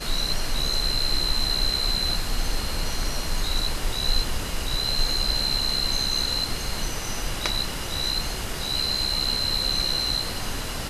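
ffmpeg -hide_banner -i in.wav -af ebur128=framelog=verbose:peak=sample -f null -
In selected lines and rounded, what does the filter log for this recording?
Integrated loudness:
  I:         -24.7 LUFS
  Threshold: -34.7 LUFS
Loudness range:
  LRA:         1.9 LU
  Threshold: -45.0 LUFS
  LRA low:   -26.0 LUFS
  LRA high:  -24.1 LUFS
Sample peak:
  Peak:       -4.8 dBFS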